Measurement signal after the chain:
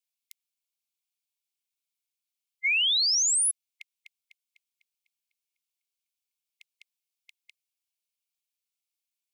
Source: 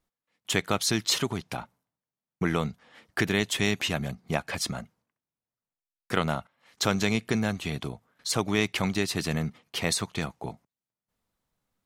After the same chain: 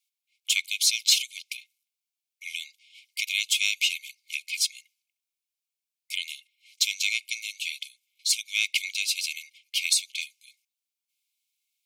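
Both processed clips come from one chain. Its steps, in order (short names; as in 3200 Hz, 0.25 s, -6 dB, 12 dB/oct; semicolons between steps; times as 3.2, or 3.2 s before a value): brick-wall FIR high-pass 2100 Hz; in parallel at -6 dB: soft clip -20.5 dBFS; on the sum: gain +3 dB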